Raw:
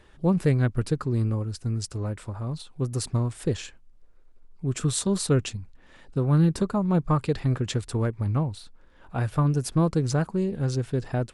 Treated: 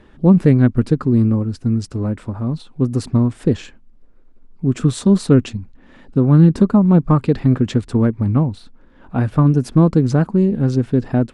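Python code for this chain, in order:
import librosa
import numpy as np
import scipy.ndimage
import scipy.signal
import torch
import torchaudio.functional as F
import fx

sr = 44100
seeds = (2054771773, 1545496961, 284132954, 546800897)

y = fx.lowpass(x, sr, hz=2600.0, slope=6)
y = fx.peak_eq(y, sr, hz=240.0, db=10.5, octaves=0.83)
y = y * 10.0 ** (6.0 / 20.0)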